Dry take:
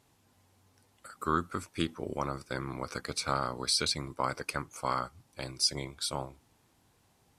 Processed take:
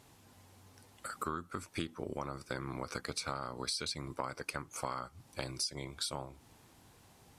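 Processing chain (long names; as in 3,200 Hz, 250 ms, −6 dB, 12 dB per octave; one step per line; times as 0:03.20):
downward compressor 6 to 1, threshold −42 dBFS, peak gain reduction 18 dB
level +6.5 dB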